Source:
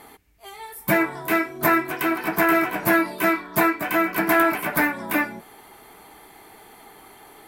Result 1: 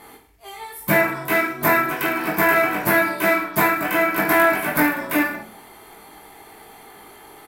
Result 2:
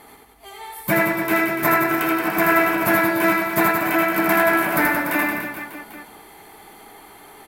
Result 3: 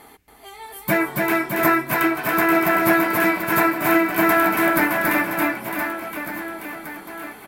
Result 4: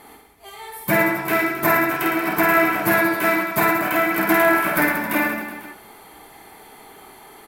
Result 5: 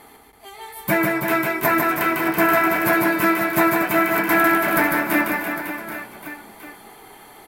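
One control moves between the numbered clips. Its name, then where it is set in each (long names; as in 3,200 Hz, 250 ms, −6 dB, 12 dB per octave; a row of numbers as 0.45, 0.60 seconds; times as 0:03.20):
reverse bouncing-ball delay, first gap: 20, 80, 280, 50, 150 milliseconds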